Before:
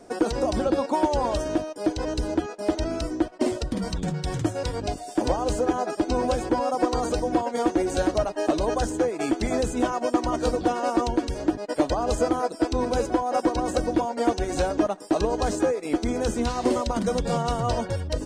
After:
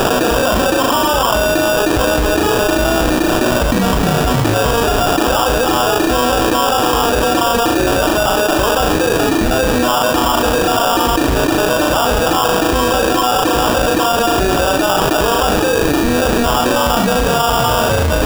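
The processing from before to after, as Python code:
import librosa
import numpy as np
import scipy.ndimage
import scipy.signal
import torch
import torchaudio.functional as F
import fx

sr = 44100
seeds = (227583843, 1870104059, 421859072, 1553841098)

y = fx.delta_mod(x, sr, bps=32000, step_db=-36.5)
y = fx.peak_eq(y, sr, hz=1800.0, db=15.0, octaves=2.2)
y = fx.room_flutter(y, sr, wall_m=6.3, rt60_s=0.36)
y = fx.sample_hold(y, sr, seeds[0], rate_hz=2100.0, jitter_pct=0)
y = fx.env_flatten(y, sr, amount_pct=100)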